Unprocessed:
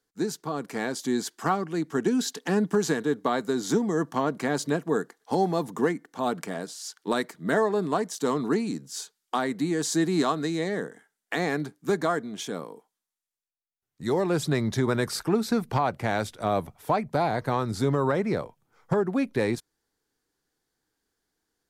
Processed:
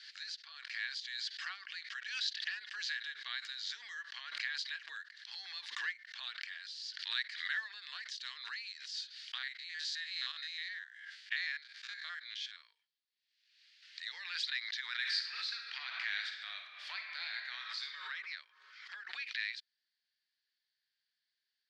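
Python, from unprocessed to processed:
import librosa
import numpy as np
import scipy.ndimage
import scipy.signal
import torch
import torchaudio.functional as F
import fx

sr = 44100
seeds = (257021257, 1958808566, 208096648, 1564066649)

y = fx.spec_steps(x, sr, hold_ms=50, at=(9.38, 12.7))
y = fx.reverb_throw(y, sr, start_s=14.94, length_s=3.1, rt60_s=1.2, drr_db=2.0)
y = scipy.signal.sosfilt(scipy.signal.cheby1(3, 1.0, [1700.0, 4600.0], 'bandpass', fs=sr, output='sos'), y)
y = fx.high_shelf(y, sr, hz=2900.0, db=9.5)
y = fx.pre_swell(y, sr, db_per_s=55.0)
y = y * 10.0 ** (-5.5 / 20.0)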